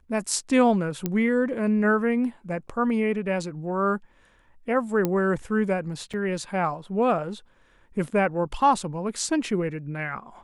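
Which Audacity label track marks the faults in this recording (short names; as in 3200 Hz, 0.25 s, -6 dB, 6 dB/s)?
1.060000	1.060000	pop -12 dBFS
5.050000	5.050000	pop -11 dBFS
6.130000	6.140000	gap 6.2 ms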